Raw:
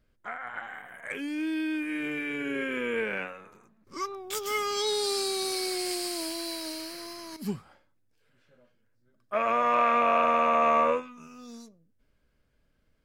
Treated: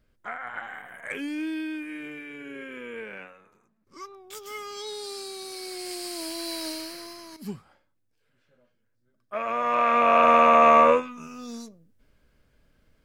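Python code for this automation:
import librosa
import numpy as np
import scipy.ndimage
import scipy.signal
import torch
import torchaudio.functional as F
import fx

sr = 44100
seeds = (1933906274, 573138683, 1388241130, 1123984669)

y = fx.gain(x, sr, db=fx.line((1.24, 2.0), (2.28, -8.0), (5.48, -8.0), (6.65, 3.5), (7.36, -3.0), (9.47, -3.0), (10.32, 7.0)))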